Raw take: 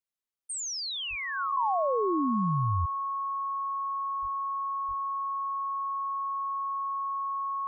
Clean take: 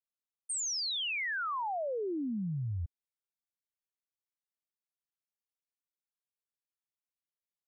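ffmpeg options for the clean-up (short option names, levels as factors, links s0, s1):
-filter_complex "[0:a]bandreject=f=1100:w=30,asplit=3[s0][s1][s2];[s0]afade=t=out:st=1.09:d=0.02[s3];[s1]highpass=f=140:w=0.5412,highpass=f=140:w=1.3066,afade=t=in:st=1.09:d=0.02,afade=t=out:st=1.21:d=0.02[s4];[s2]afade=t=in:st=1.21:d=0.02[s5];[s3][s4][s5]amix=inputs=3:normalize=0,asplit=3[s6][s7][s8];[s6]afade=t=out:st=4.21:d=0.02[s9];[s7]highpass=f=140:w=0.5412,highpass=f=140:w=1.3066,afade=t=in:st=4.21:d=0.02,afade=t=out:st=4.33:d=0.02[s10];[s8]afade=t=in:st=4.33:d=0.02[s11];[s9][s10][s11]amix=inputs=3:normalize=0,asplit=3[s12][s13][s14];[s12]afade=t=out:st=4.87:d=0.02[s15];[s13]highpass=f=140:w=0.5412,highpass=f=140:w=1.3066,afade=t=in:st=4.87:d=0.02,afade=t=out:st=4.99:d=0.02[s16];[s14]afade=t=in:st=4.99:d=0.02[s17];[s15][s16][s17]amix=inputs=3:normalize=0,asetnsamples=n=441:p=0,asendcmd='1.57 volume volume -6.5dB',volume=1"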